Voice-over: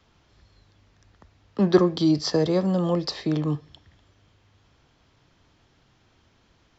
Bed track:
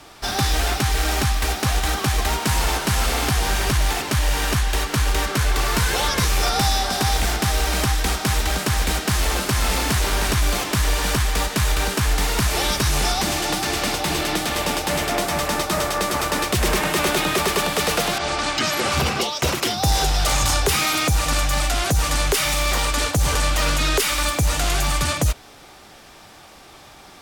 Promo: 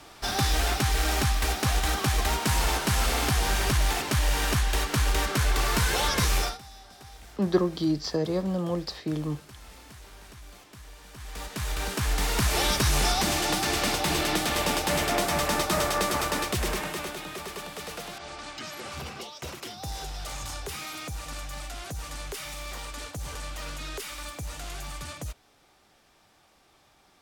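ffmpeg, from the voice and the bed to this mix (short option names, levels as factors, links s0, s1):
-filter_complex "[0:a]adelay=5800,volume=0.531[s0];[1:a]volume=9.44,afade=t=out:st=6.37:d=0.21:silence=0.0707946,afade=t=in:st=11.13:d=1.47:silence=0.0630957,afade=t=out:st=15.98:d=1.18:silence=0.211349[s1];[s0][s1]amix=inputs=2:normalize=0"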